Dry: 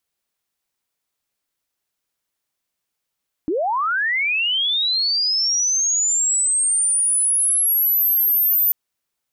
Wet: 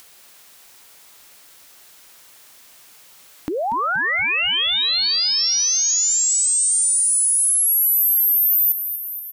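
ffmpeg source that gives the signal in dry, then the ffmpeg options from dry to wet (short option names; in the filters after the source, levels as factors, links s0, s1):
-f lavfi -i "aevalsrc='pow(10,(-18+4*t/5.24)/20)*sin(2*PI*(280*t+13720*t*t/(2*5.24)))':d=5.24:s=44100"
-filter_complex "[0:a]lowshelf=f=330:g=-8,acompressor=mode=upward:threshold=0.0708:ratio=2.5,asplit=2[s0][s1];[s1]asplit=8[s2][s3][s4][s5][s6][s7][s8][s9];[s2]adelay=237,afreqshift=-72,volume=0.299[s10];[s3]adelay=474,afreqshift=-144,volume=0.195[s11];[s4]adelay=711,afreqshift=-216,volume=0.126[s12];[s5]adelay=948,afreqshift=-288,volume=0.0822[s13];[s6]adelay=1185,afreqshift=-360,volume=0.0531[s14];[s7]adelay=1422,afreqshift=-432,volume=0.0347[s15];[s8]adelay=1659,afreqshift=-504,volume=0.0224[s16];[s9]adelay=1896,afreqshift=-576,volume=0.0146[s17];[s10][s11][s12][s13][s14][s15][s16][s17]amix=inputs=8:normalize=0[s18];[s0][s18]amix=inputs=2:normalize=0"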